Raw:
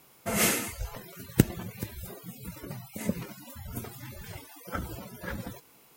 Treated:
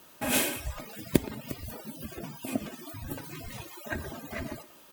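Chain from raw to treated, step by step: comb 3.9 ms, depth 33%; in parallel at 0 dB: compressor, threshold -43 dBFS, peak gain reduction 27.5 dB; on the sum: varispeed +21%; speakerphone echo 0.12 s, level -14 dB; gain -2.5 dB

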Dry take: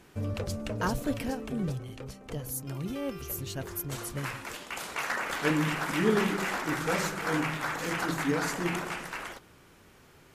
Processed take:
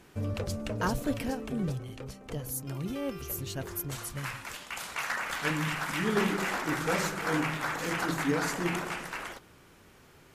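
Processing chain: 3.91–6.16 bell 370 Hz -8 dB 1.6 oct

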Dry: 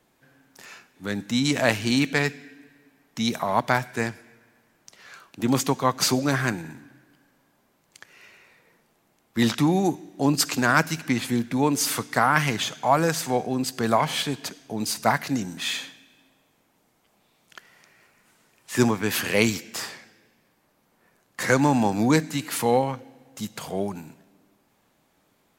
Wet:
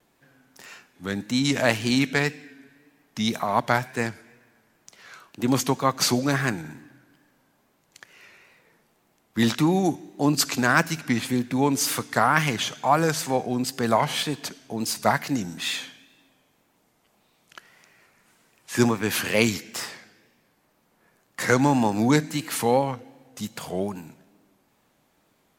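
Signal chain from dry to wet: wow and flutter 71 cents

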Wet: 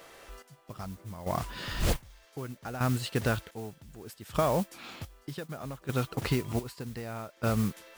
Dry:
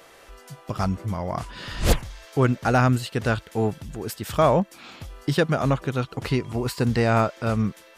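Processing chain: compressor 6:1, threshold -21 dBFS, peak gain reduction 9 dB; step gate "xxx......xx" 107 bpm -12 dB; modulation noise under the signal 17 dB; gain -2 dB

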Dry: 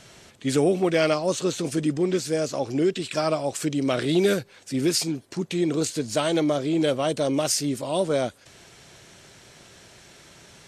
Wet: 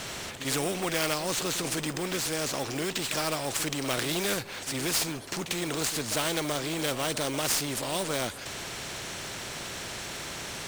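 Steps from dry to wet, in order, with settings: G.711 law mismatch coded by mu; pre-echo 48 ms -15 dB; in parallel at -9 dB: sample-rate reducer 8800 Hz, jitter 20%; on the sum: spectral compressor 2:1; gain -5.5 dB

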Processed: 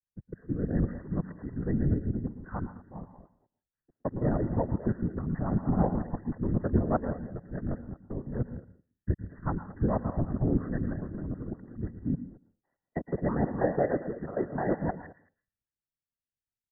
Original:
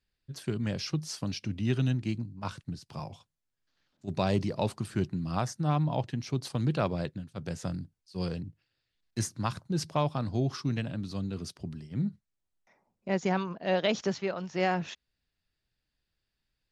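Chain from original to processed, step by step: local time reversal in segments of 0.162 s; dynamic EQ 1500 Hz, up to -4 dB, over -44 dBFS, Q 0.74; sample leveller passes 1; speakerphone echo 0.22 s, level -10 dB; rotary speaker horn 0.65 Hz, later 6.3 Hz, at 2.34; whisperiser; brick-wall FIR low-pass 2000 Hz; on a send at -12 dB: reverb RT60 0.30 s, pre-delay 0.11 s; on the sum: three-band expander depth 40%

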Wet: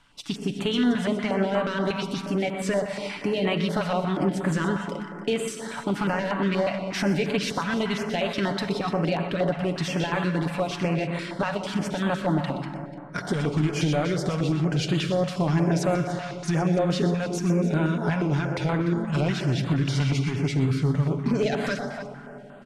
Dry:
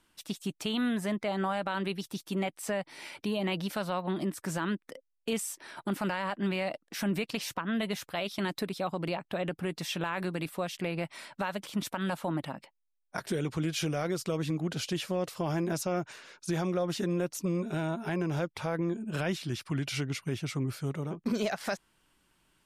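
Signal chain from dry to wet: high shelf 11000 Hz -11.5 dB; comb 7 ms, depth 42%; in parallel at +2 dB: compressor, threshold -35 dBFS, peak gain reduction 10 dB; on the sum: hard clip -20.5 dBFS, distortion -21 dB; air absorption 53 m; tapped delay 0.123/0.295 s -10/-14 dB; reverb RT60 3.1 s, pre-delay 38 ms, DRR 6.5 dB; stepped notch 8.4 Hz 360–5500 Hz; gain +3.5 dB

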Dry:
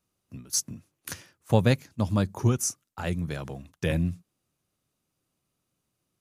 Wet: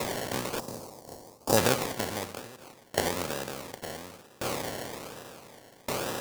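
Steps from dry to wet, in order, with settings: per-bin compression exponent 0.2; decimation with a swept rate 28×, swing 60% 1.1 Hz; 0.59–1.57 band shelf 2200 Hz -11.5 dB; 2.39–3.73 compressor, threshold -20 dBFS, peak gain reduction 7.5 dB; tone controls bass -12 dB, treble +5 dB; dB-ramp tremolo decaying 0.68 Hz, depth 27 dB

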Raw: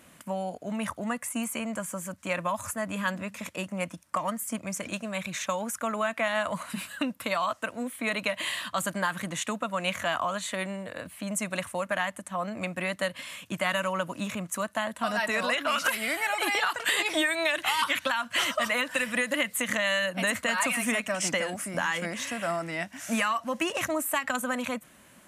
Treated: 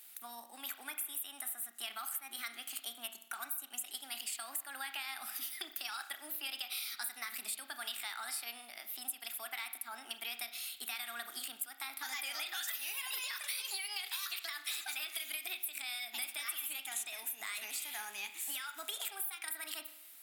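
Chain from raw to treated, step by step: HPF 140 Hz 24 dB/oct; differentiator; compressor 6:1, threshold -41 dBFS, peak gain reduction 15 dB; spring tank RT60 1 s, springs 37 ms, chirp 40 ms, DRR 8.5 dB; wide varispeed 1.25×; gain +4 dB

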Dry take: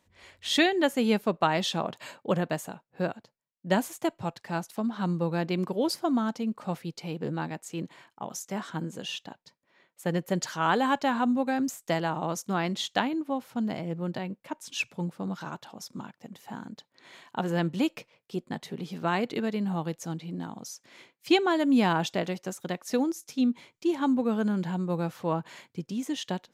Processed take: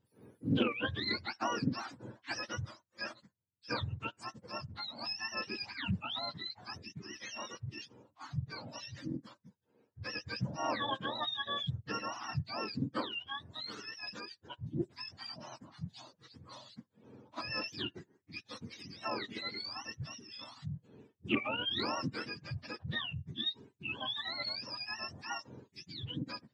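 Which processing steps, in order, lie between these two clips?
spectrum mirrored in octaves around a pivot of 950 Hz; Doppler distortion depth 0.21 ms; gain -7.5 dB

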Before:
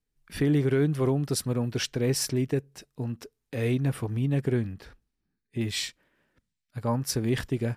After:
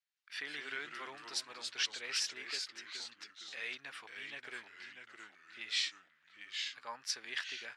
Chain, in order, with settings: echoes that change speed 0.113 s, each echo -2 st, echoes 3, each echo -6 dB; Butterworth band-pass 2800 Hz, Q 0.69; gain -1.5 dB

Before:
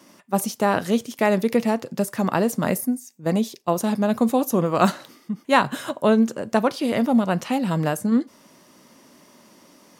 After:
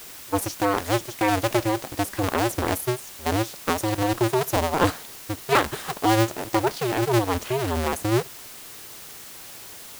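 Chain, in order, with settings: cycle switcher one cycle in 2, inverted; added noise white -39 dBFS; gain -2.5 dB

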